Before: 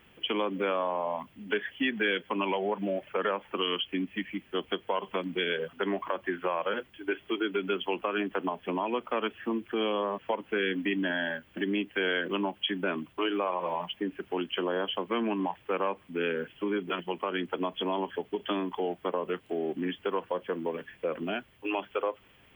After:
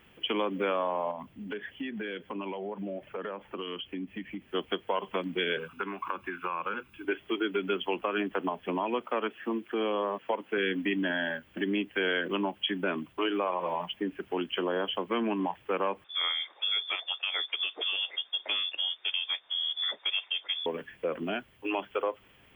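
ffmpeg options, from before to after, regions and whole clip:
ffmpeg -i in.wav -filter_complex "[0:a]asettb=1/sr,asplit=3[link_01][link_02][link_03];[link_01]atrim=end=1.114[link_04];[link_02]atrim=start=1.11:end=4.48,asetpts=PTS-STARTPTS,afade=type=in:duration=0.004:curve=qsin,afade=type=out:start_time=3.366:duration=0.004:curve=qsin,tiltshelf=frequency=660:gain=3.5,acompressor=threshold=-35dB:ratio=3:attack=3.2:release=140:knee=1:detection=peak[link_05];[link_03]atrim=start=4.476[link_06];[link_04][link_05]acrossfade=duration=0.004:curve1=hsin:curve2=qsin[link_07];[link_07][link_06]acrossfade=duration=0.004:curve1=qsin:curve2=hsin,asettb=1/sr,asplit=3[link_08][link_09][link_10];[link_08]atrim=end=5.574[link_11];[link_09]atrim=start=5.57:end=7.05,asetpts=PTS-STARTPTS,afade=type=in:duration=0.004:curve=qsin,afade=type=out:start_time=1.476:duration=0.004:curve=qsin,aecho=1:1:0.8:0.72,atrim=end_sample=65268,acrossover=split=690|2600[link_12][link_13][link_14];[link_12]acompressor=threshold=-40dB:ratio=4[link_15];[link_13]acompressor=threshold=-31dB:ratio=4[link_16];[link_14]acompressor=threshold=-51dB:ratio=4[link_17];[link_15][link_16][link_17]amix=inputs=3:normalize=0[link_18];[link_10]atrim=start=7.046[link_19];[link_11][link_18]acrossfade=duration=0.004:curve1=hsin:curve2=qsin[link_20];[link_20][link_19]acrossfade=duration=0.004:curve1=qsin:curve2=hsin,asettb=1/sr,asplit=3[link_21][link_22][link_23];[link_21]atrim=end=9.024[link_24];[link_22]atrim=start=9.02:end=10.58,asetpts=PTS-STARTPTS,afade=type=in:duration=0.004:curve=qsin,afade=type=out:start_time=1.556:duration=0.004:curve=qsin,highpass=200,acrossover=split=2600[link_25][link_26];[link_26]acompressor=threshold=-47dB:ratio=4:attack=1:release=60[link_27];[link_25][link_27]amix=inputs=2:normalize=0[link_28];[link_23]atrim=start=10.576[link_29];[link_24][link_28]acrossfade=duration=0.004:curve1=hsin:curve2=qsin[link_30];[link_30][link_29]acrossfade=duration=0.004:curve1=qsin:curve2=hsin,asettb=1/sr,asplit=3[link_31][link_32][link_33];[link_31]atrim=end=16.044[link_34];[link_32]atrim=start=16.04:end=20.66,asetpts=PTS-STARTPTS,afade=type=in:duration=0.004:curve=qsin,afade=type=out:start_time=4.616:duration=0.004:curve=qsin,equalizer=frequency=680:width_type=o:width=0.23:gain=-12,lowpass=frequency=3100:width_type=q:width=0.5098,lowpass=frequency=3100:width_type=q:width=0.6013,lowpass=frequency=3100:width_type=q:width=0.9,lowpass=frequency=3100:width_type=q:width=2.563,afreqshift=-3700[link_35];[link_33]atrim=start=20.656[link_36];[link_34][link_35]acrossfade=duration=0.004:curve1=hsin:curve2=qsin[link_37];[link_37][link_36]acrossfade=duration=0.004:curve1=qsin:curve2=hsin" out.wav

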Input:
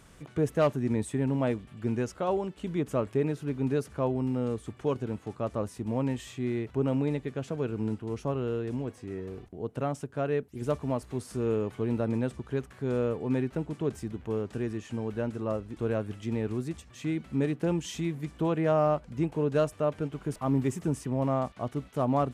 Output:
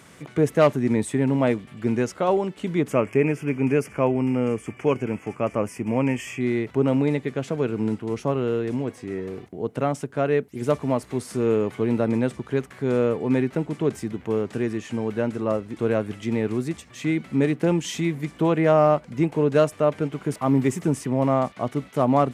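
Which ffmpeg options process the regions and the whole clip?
ffmpeg -i in.wav -filter_complex "[0:a]asettb=1/sr,asplit=3[link_01][link_02][link_03];[link_01]atrim=end=2.924[link_04];[link_02]atrim=start=2.92:end=6.41,asetpts=PTS-STARTPTS,afade=type=in:duration=0.004:curve=qsin,afade=type=out:start_time=3.486:duration=0.004:curve=qsin,asuperstop=centerf=3900:order=4:qfactor=2.3,equalizer=frequency=2400:width=3.4:gain=9[link_05];[link_03]atrim=start=6.406[link_06];[link_04][link_05]acrossfade=duration=0.004:curve1=hsin:curve2=qsin[link_07];[link_07][link_06]acrossfade=duration=0.004:curve1=qsin:curve2=hsin,highpass=130,equalizer=frequency=2100:width=5.2:gain=5.5,volume=7.5dB" out.wav

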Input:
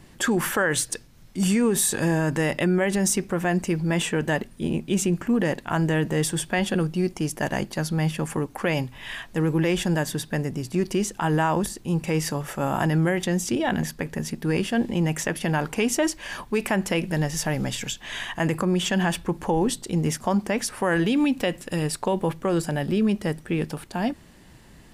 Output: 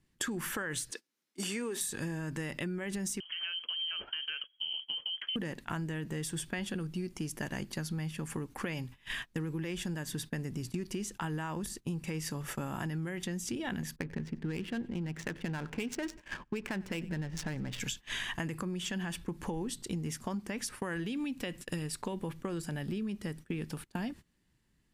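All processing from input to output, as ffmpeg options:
ffmpeg -i in.wav -filter_complex "[0:a]asettb=1/sr,asplit=3[link_01][link_02][link_03];[link_01]atrim=end=0.914[link_04];[link_02]atrim=start=0.91:end=1.81,asetpts=PTS-STARTPTS,afade=type=in:duration=0.004:curve=qsin,afade=type=out:start_time=0.896:duration=0.004:curve=qsin,highpass=frequency=290:width=0.5412,highpass=frequency=290:width=1.3066,acrossover=split=5600[link_05][link_06];[link_06]acompressor=threshold=-35dB:ratio=4:attack=1:release=60[link_07];[link_05][link_07]amix=inputs=2:normalize=0[link_08];[link_03]atrim=start=1.806[link_09];[link_04][link_08]acrossfade=duration=0.004:curve1=hsin:curve2=qsin[link_10];[link_10][link_09]acrossfade=duration=0.004:curve1=qsin:curve2=hsin,asettb=1/sr,asplit=3[link_11][link_12][link_13];[link_11]atrim=end=3.204[link_14];[link_12]atrim=start=3.2:end=5.36,asetpts=PTS-STARTPTS,afade=type=in:duration=0.004:curve=qsin,afade=type=out:start_time=2.156:duration=0.004:curve=qsin,acompressor=threshold=-28dB:ratio=16:attack=3.2:release=140:knee=1:detection=peak,lowpass=frequency=2800:width_type=q:width=0.5098,lowpass=frequency=2800:width_type=q:width=0.6013,lowpass=frequency=2800:width_type=q:width=0.9,lowpass=frequency=2800:width_type=q:width=2.563,afreqshift=-3300[link_15];[link_13]atrim=start=5.356[link_16];[link_14][link_15]acrossfade=duration=0.004:curve1=hsin:curve2=qsin[link_17];[link_17][link_16]acrossfade=duration=0.004:curve1=qsin:curve2=hsin,asettb=1/sr,asplit=3[link_18][link_19][link_20];[link_18]atrim=end=13.964[link_21];[link_19]atrim=start=13.96:end=17.8,asetpts=PTS-STARTPTS,afade=type=in:duration=0.004:curve=qsin,afade=type=out:start_time=3.836:duration=0.004:curve=qsin,adynamicsmooth=sensitivity=4.5:basefreq=860,bandreject=frequency=1200:width=21,aecho=1:1:94|188|282|376:0.0794|0.0429|0.0232|0.0125,atrim=end_sample=169344[link_22];[link_20]atrim=start=17.796[link_23];[link_21][link_22]acrossfade=duration=0.004:curve1=hsin:curve2=qsin[link_24];[link_24][link_23]acrossfade=duration=0.004:curve1=qsin:curve2=hsin,agate=range=-23dB:threshold=-35dB:ratio=16:detection=peak,equalizer=frequency=670:width_type=o:width=1.2:gain=-8.5,acompressor=threshold=-33dB:ratio=12" out.wav

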